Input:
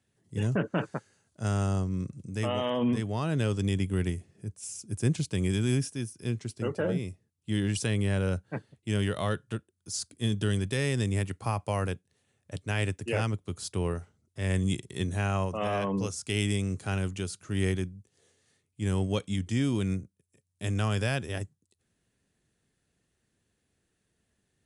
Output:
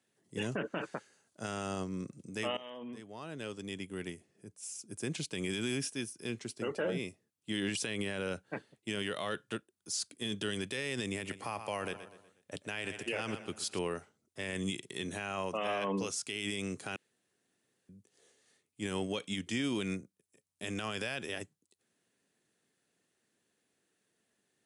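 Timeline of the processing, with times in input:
2.57–6.17 fade in, from -19.5 dB
11.1–13.79 feedback echo 0.121 s, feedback 46%, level -16 dB
16.96–17.89 room tone
whole clip: HPF 250 Hz 12 dB/oct; dynamic EQ 2700 Hz, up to +6 dB, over -51 dBFS, Q 0.98; limiter -25 dBFS

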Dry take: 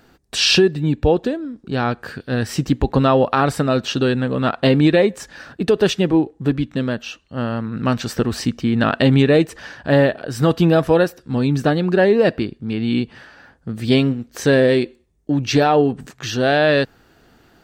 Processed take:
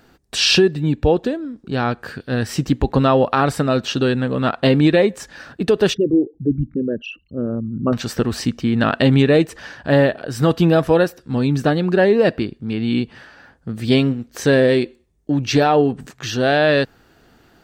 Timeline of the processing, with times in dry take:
5.94–7.93 formant sharpening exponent 3

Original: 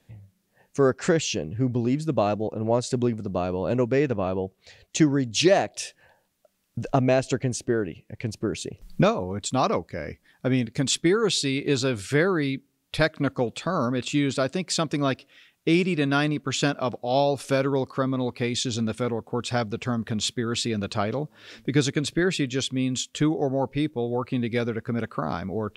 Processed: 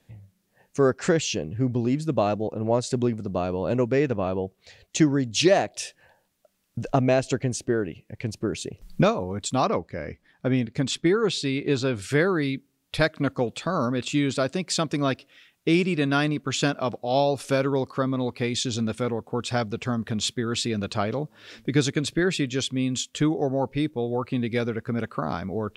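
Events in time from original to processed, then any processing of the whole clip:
9.64–12.02 LPF 3300 Hz 6 dB/oct

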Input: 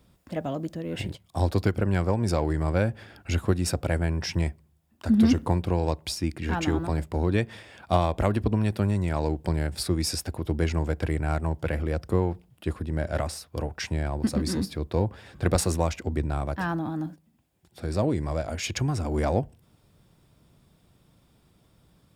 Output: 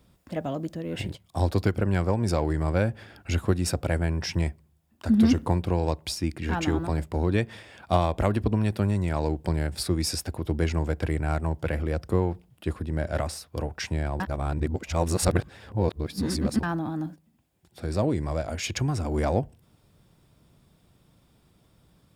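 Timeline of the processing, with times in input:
14.2–16.63 reverse

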